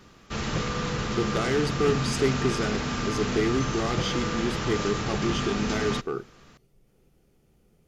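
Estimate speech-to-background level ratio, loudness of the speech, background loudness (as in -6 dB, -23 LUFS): 0.5 dB, -29.0 LUFS, -29.5 LUFS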